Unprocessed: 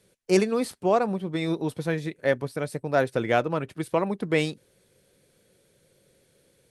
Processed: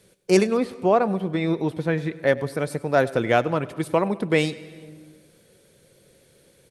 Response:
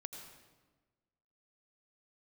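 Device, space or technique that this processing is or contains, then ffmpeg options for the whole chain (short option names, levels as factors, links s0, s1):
compressed reverb return: -filter_complex "[0:a]asettb=1/sr,asplit=3[s0][s1][s2];[s0]atrim=end=0.574[s3];[s1]atrim=start=0.57:end=2.27,asetpts=PTS-STARTPTS,afade=t=in:d=0.004:c=qsin,afade=t=out:st=1.696:d=0.004:c=qsin,acrossover=split=3400[s4][s5];[s5]acompressor=threshold=0.00158:ratio=4:attack=1:release=60[s6];[s4][s6]amix=inputs=2:normalize=0[s7];[s2]atrim=start=2.266[s8];[s3][s7]acrossfade=d=0.004:c1=hsin:c2=qsin[s9];[s9][s8]acrossfade=d=0.004:c1=qsin:c2=hsin,asplit=2[s10][s11];[1:a]atrim=start_sample=2205[s12];[s11][s12]afir=irnorm=-1:irlink=0,acompressor=threshold=0.0112:ratio=6,volume=0.891[s13];[s10][s13]amix=inputs=2:normalize=0,aecho=1:1:99|198|297|396:0.0891|0.0472|0.025|0.0133,volume=1.33"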